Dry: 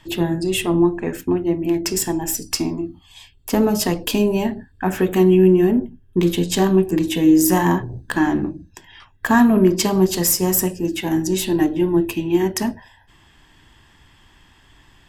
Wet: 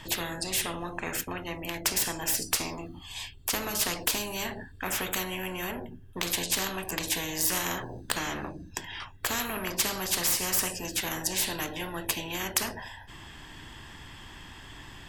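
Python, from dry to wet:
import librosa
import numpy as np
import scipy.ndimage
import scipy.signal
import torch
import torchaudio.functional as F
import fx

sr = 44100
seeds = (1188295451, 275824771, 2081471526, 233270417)

y = fx.spectral_comp(x, sr, ratio=4.0)
y = y * librosa.db_to_amplitude(-3.0)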